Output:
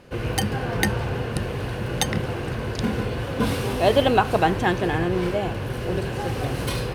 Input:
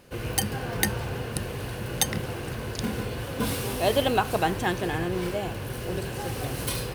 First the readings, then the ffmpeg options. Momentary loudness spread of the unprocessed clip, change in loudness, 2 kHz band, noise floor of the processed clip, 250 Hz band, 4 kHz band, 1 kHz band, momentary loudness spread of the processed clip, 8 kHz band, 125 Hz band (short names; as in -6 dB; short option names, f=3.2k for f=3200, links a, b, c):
9 LU, +4.5 dB, +4.0 dB, -30 dBFS, +5.5 dB, +2.0 dB, +5.0 dB, 9 LU, -3.0 dB, +5.5 dB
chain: -af "aemphasis=mode=reproduction:type=50kf,volume=5.5dB"